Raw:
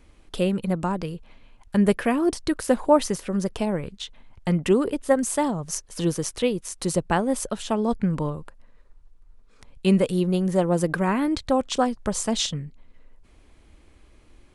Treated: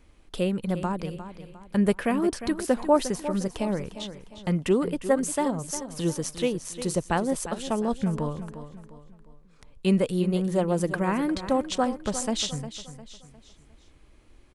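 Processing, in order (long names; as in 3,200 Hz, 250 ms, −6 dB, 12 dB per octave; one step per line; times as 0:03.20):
repeating echo 354 ms, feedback 39%, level −12 dB
level −3 dB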